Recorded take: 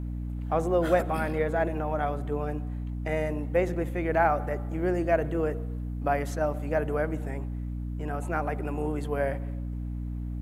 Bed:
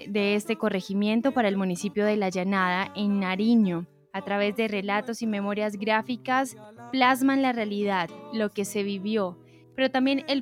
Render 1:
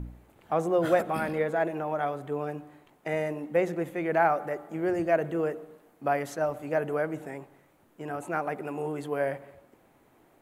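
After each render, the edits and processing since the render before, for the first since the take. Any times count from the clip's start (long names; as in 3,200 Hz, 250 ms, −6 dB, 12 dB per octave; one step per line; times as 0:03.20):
hum removal 60 Hz, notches 5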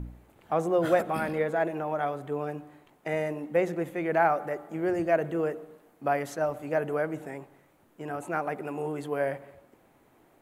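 no processing that can be heard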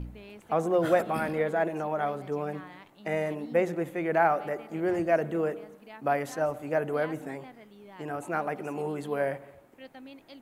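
mix in bed −23.5 dB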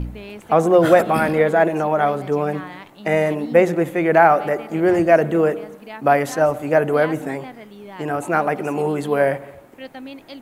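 level +11.5 dB
brickwall limiter −1 dBFS, peak gain reduction 1.5 dB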